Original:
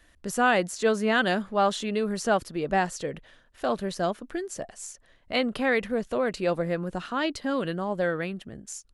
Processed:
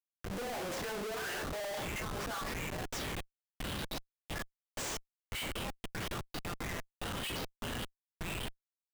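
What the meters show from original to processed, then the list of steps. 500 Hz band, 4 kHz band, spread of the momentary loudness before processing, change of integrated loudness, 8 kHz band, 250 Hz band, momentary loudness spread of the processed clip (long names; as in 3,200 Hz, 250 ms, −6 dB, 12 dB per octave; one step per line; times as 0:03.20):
−16.0 dB, −5.5 dB, 13 LU, −12.5 dB, −5.5 dB, −15.0 dB, 6 LU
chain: parametric band 87 Hz −8.5 dB 0.82 octaves
brickwall limiter −17 dBFS, peak gain reduction 6 dB
LFO wah 1.7 Hz 470–2,300 Hz, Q 2.6
downward compressor 1.5 to 1, threshold −45 dBFS, peak gain reduction 7.5 dB
transient designer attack +6 dB, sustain +10 dB
rectangular room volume 33 cubic metres, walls mixed, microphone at 0.85 metres
high-pass filter sweep 180 Hz → 3,600 Hz, 0:00.77–0:03.00
output level in coarse steps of 18 dB
flanger 0.43 Hz, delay 7.1 ms, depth 5.4 ms, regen −67%
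bass and treble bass −6 dB, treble +4 dB
notch filter 4,200 Hz, Q 12
comparator with hysteresis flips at −55 dBFS
level +10.5 dB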